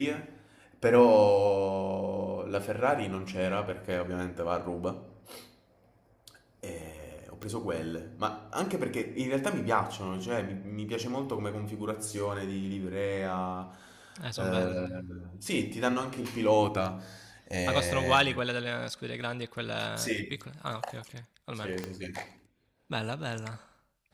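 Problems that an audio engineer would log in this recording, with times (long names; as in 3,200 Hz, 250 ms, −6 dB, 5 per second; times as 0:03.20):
0:07.43: click −24 dBFS
0:21.84: click −20 dBFS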